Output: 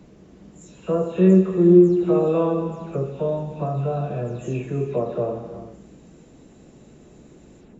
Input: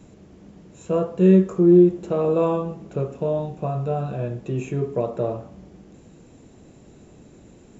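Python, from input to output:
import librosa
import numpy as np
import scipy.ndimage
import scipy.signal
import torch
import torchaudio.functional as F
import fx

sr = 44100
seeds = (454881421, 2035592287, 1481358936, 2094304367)

y = fx.spec_delay(x, sr, highs='early', ms=213)
y = fx.rev_gated(y, sr, seeds[0], gate_ms=420, shape='flat', drr_db=7.5)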